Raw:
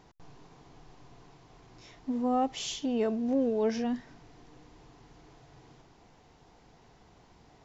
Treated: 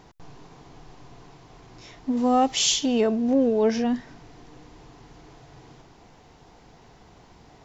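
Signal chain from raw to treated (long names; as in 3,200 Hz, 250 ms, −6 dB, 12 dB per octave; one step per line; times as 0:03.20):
0:02.17–0:03.01: high-shelf EQ 2,500 Hz +10.5 dB
level +7 dB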